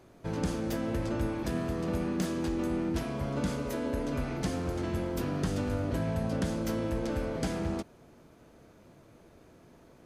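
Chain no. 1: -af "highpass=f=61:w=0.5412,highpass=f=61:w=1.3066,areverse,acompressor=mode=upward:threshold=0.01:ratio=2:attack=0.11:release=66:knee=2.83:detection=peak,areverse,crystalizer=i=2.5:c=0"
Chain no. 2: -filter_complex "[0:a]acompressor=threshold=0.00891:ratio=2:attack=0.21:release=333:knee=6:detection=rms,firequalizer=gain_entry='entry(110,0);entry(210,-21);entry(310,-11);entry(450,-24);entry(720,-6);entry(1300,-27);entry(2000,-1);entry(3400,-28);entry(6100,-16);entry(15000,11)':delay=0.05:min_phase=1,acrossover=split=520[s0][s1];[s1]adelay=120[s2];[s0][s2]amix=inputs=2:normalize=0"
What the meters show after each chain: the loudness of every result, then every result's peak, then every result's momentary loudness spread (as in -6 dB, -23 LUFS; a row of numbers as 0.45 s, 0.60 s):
-32.0 LUFS, -49.0 LUFS; -15.0 dBFS, -32.5 dBFS; 20 LU, 19 LU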